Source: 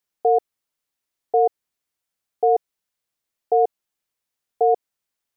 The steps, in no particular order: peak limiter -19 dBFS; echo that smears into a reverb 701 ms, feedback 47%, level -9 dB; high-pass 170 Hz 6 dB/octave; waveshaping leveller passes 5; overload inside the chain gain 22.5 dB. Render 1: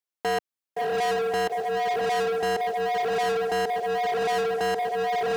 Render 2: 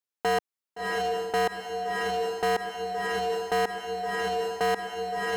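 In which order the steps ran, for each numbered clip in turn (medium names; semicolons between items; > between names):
echo that smears into a reverb > peak limiter > overload inside the chain > waveshaping leveller > high-pass; waveshaping leveller > echo that smears into a reverb > peak limiter > high-pass > overload inside the chain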